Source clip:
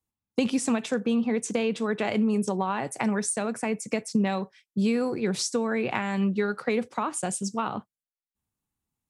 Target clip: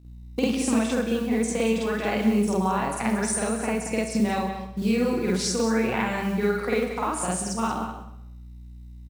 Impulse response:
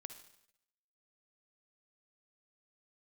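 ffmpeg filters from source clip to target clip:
-filter_complex "[0:a]aeval=exprs='val(0)+0.00501*(sin(2*PI*60*n/s)+sin(2*PI*2*60*n/s)/2+sin(2*PI*3*60*n/s)/3+sin(2*PI*4*60*n/s)/4+sin(2*PI*5*60*n/s)/5)':channel_layout=same,acrusher=bits=7:mode=log:mix=0:aa=0.000001,asplit=2[link_01][link_02];[link_02]adelay=32,volume=-11dB[link_03];[link_01][link_03]amix=inputs=2:normalize=0,asplit=2[link_04][link_05];[link_05]adelay=180.8,volume=-9dB,highshelf=frequency=4000:gain=-4.07[link_06];[link_04][link_06]amix=inputs=2:normalize=0,asplit=2[link_07][link_08];[1:a]atrim=start_sample=2205,adelay=49[link_09];[link_08][link_09]afir=irnorm=-1:irlink=0,volume=9dB[link_10];[link_07][link_10]amix=inputs=2:normalize=0,volume=-3.5dB"

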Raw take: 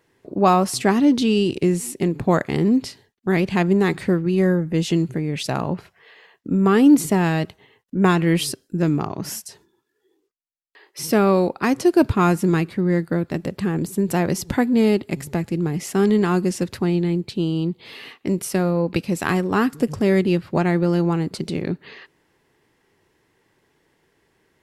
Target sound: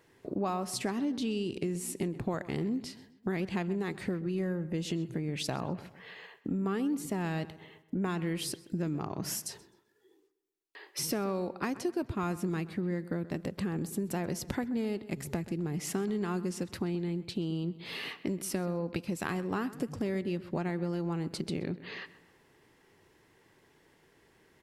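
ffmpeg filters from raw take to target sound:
ffmpeg -i in.wav -filter_complex "[0:a]acompressor=threshold=-32dB:ratio=5,asplit=2[link_01][link_02];[link_02]adelay=129,lowpass=frequency=3100:poles=1,volume=-16dB,asplit=2[link_03][link_04];[link_04]adelay=129,lowpass=frequency=3100:poles=1,volume=0.46,asplit=2[link_05][link_06];[link_06]adelay=129,lowpass=frequency=3100:poles=1,volume=0.46,asplit=2[link_07][link_08];[link_08]adelay=129,lowpass=frequency=3100:poles=1,volume=0.46[link_09];[link_01][link_03][link_05][link_07][link_09]amix=inputs=5:normalize=0" out.wav

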